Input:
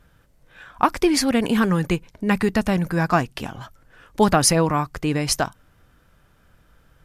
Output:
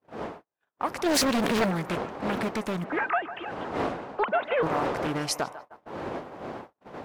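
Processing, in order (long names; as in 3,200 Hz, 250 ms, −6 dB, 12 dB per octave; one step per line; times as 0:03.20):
0:02.84–0:04.63: three sine waves on the formant tracks
wind on the microphone 610 Hz −29 dBFS
brickwall limiter −11.5 dBFS, peak gain reduction 10.5 dB
0:01.06–0:01.71: leveller curve on the samples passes 3
high-pass filter 280 Hz 6 dB per octave
feedback echo with a band-pass in the loop 151 ms, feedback 81%, band-pass 890 Hz, level −13 dB
noise gate −37 dBFS, range −45 dB
highs frequency-modulated by the lows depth 0.82 ms
level −4.5 dB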